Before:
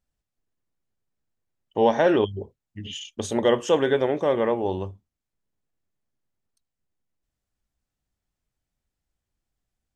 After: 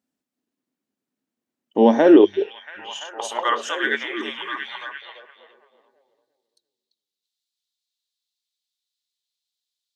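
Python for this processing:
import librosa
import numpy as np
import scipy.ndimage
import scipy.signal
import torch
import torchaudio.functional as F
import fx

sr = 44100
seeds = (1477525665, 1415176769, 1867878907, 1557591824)

y = fx.filter_sweep_highpass(x, sr, from_hz=250.0, to_hz=3900.0, start_s=1.94, end_s=4.68, q=4.7)
y = fx.echo_stepped(y, sr, ms=341, hz=3400.0, octaves=-0.7, feedback_pct=70, wet_db=-5)
y = y * 10.0 ** (1.0 / 20.0)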